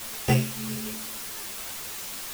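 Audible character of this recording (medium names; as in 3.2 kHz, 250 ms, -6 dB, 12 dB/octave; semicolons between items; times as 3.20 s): a buzz of ramps at a fixed pitch in blocks of 16 samples; tremolo triangle 1.4 Hz, depth 95%; a quantiser's noise floor 8-bit, dither triangular; a shimmering, thickened sound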